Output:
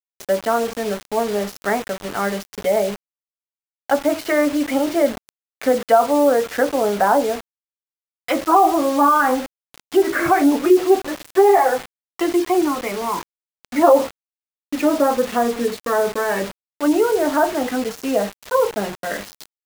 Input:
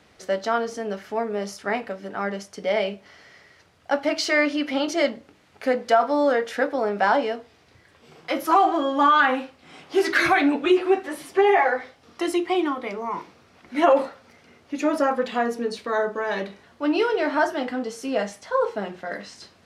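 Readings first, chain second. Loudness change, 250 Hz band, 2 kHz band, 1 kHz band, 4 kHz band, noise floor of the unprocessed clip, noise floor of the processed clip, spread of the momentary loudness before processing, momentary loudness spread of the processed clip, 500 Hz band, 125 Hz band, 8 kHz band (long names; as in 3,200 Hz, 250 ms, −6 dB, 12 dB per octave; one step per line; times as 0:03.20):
+4.5 dB, +5.5 dB, −1.0 dB, +4.0 dB, 0.0 dB, −57 dBFS, below −85 dBFS, 13 LU, 11 LU, +5.5 dB, can't be measured, +8.5 dB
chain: gate on every frequency bin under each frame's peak −30 dB strong
treble cut that deepens with the level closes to 1,100 Hz, closed at −19.5 dBFS
bit reduction 6 bits
level +5.5 dB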